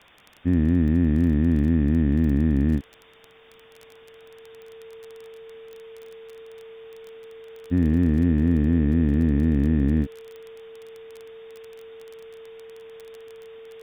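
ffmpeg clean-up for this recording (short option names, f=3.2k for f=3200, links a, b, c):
-af "adeclick=t=4,bandreject=f=450:w=30,afwtdn=0.004"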